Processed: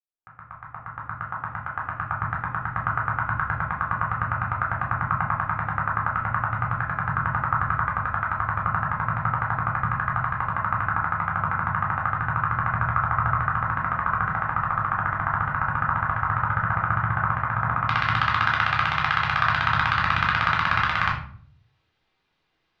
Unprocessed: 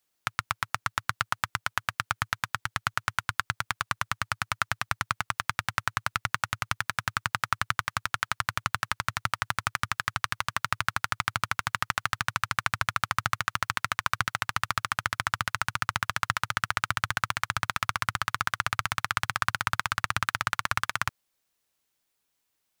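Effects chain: opening faded in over 4.57 s; limiter -10 dBFS, peak gain reduction 5.5 dB; LPF 1500 Hz 24 dB/oct, from 17.85 s 3800 Hz; shoebox room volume 600 m³, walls furnished, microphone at 3.8 m; gain +6 dB

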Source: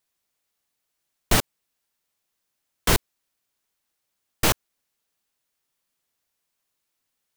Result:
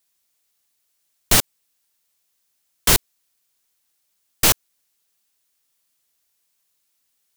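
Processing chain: high shelf 2900 Hz +9.5 dB

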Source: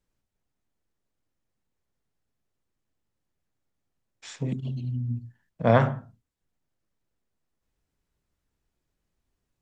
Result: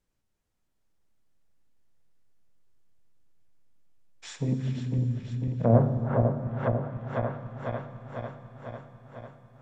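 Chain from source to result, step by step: regenerating reverse delay 0.249 s, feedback 81%, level -5 dB; treble ducked by the level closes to 540 Hz, closed at -20.5 dBFS; Schroeder reverb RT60 3.7 s, combs from 27 ms, DRR 10 dB

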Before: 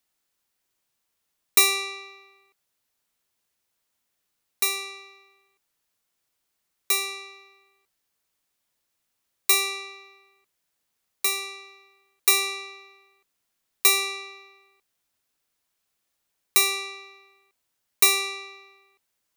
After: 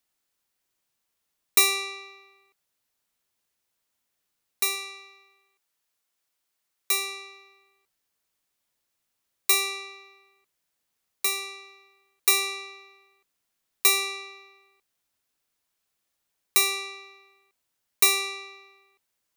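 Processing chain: 4.75–6.92 low shelf 330 Hz -7.5 dB; gain -1.5 dB

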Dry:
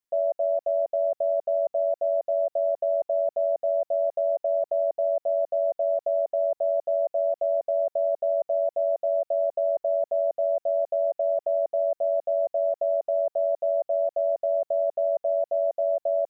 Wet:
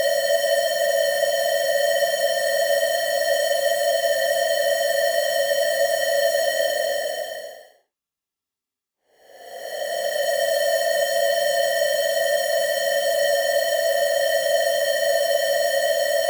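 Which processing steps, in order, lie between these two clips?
half-waves squared off; Paulstretch 41×, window 0.05 s, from 1.5

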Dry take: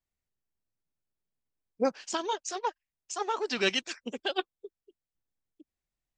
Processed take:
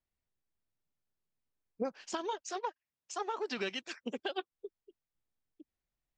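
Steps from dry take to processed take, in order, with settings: 2.41–4.52 HPF 85 Hz; compressor 6:1, threshold -32 dBFS, peak gain reduction 10.5 dB; LPF 3300 Hz 6 dB/oct

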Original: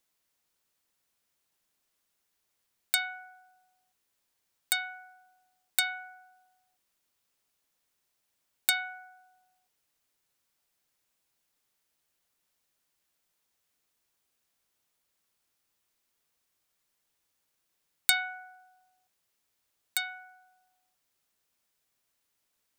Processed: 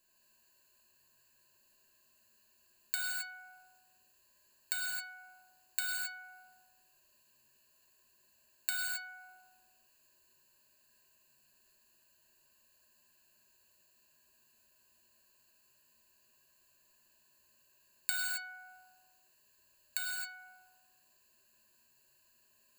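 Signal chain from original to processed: ripple EQ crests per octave 1.4, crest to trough 17 dB; compressor 2.5:1, threshold -39 dBFS, peak gain reduction 16 dB; non-linear reverb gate 0.29 s flat, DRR -3.5 dB

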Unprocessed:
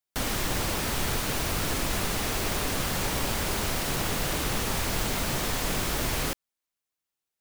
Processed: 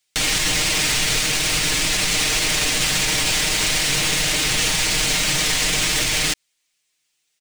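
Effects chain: band shelf 4100 Hz +11.5 dB 2.6 oct; comb 6.5 ms, depth 73%; limiter -17.5 dBFS, peak gain reduction 10 dB; gain +7 dB

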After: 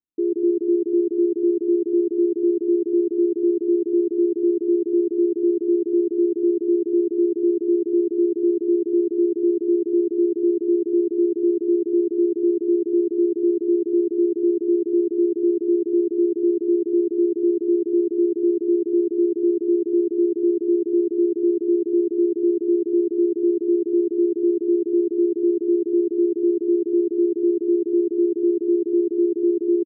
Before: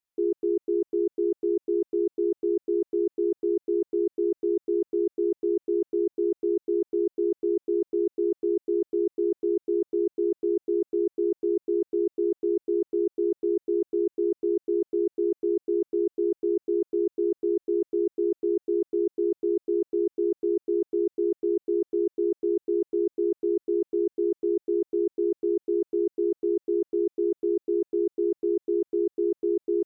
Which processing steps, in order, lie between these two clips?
EQ curve 100 Hz 0 dB, 320 Hz +12 dB, 760 Hz -22 dB; echo 0.176 s -3 dB; gain -3 dB

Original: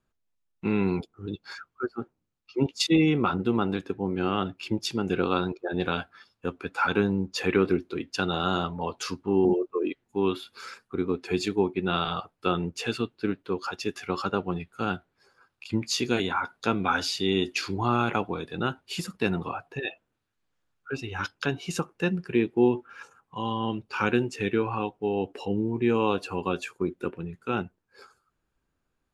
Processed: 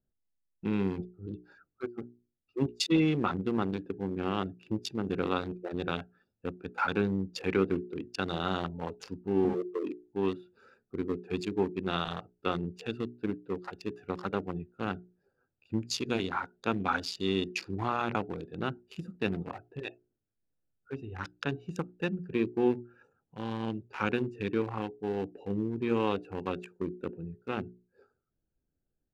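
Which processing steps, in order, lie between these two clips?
Wiener smoothing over 41 samples; notches 60/120/180/240/300/360/420 Hz; gain -3.5 dB

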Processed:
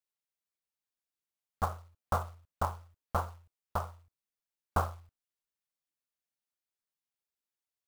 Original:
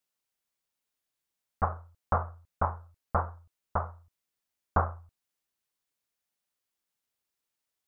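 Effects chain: spectral noise reduction 7 dB; short-mantissa float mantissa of 2-bit; gain -3.5 dB

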